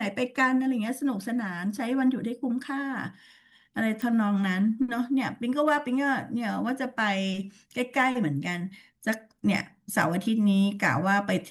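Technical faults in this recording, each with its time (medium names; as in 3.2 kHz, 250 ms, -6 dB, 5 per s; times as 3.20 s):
4.02 s: pop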